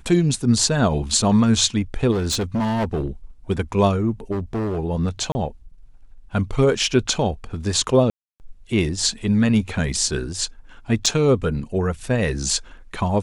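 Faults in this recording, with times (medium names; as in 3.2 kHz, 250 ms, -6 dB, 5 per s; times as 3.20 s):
2.11–3.08 s: clipped -18.5 dBFS
4.31–4.79 s: clipped -21 dBFS
5.32–5.35 s: dropout 30 ms
8.10–8.40 s: dropout 299 ms
11.06 s: dropout 4.7 ms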